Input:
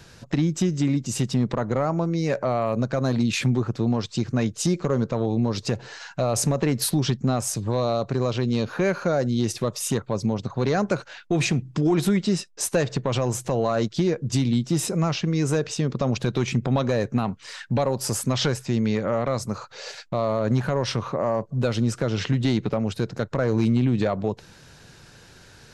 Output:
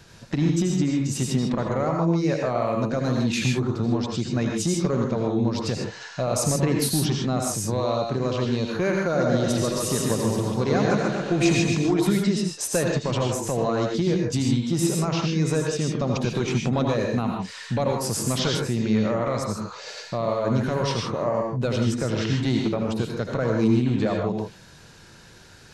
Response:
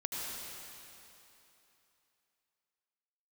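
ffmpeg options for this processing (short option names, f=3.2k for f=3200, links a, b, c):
-filter_complex "[0:a]asettb=1/sr,asplit=3[a][b][c];[a]atrim=end=9.044[d];[b]atrim=start=9.04:end=11.75,asetpts=PTS-STARTPTS,afade=t=in:d=0.004:c=qsin,afade=t=out:st=2.706:d=0.004:c=qsin,aecho=1:1:140|266|379.4|481.5|573.3:0.631|0.398|0.251|0.158|0.1,atrim=end_sample=119511[e];[c]atrim=start=11.746[f];[d][e]acrossfade=d=0.004:c1=hsin:c2=qsin[g];[g][f]acrossfade=d=0.004:c1=qsin:c2=hsin[h];[1:a]atrim=start_sample=2205,afade=t=out:st=0.21:d=0.01,atrim=end_sample=9702[i];[h][i]afir=irnorm=-1:irlink=0"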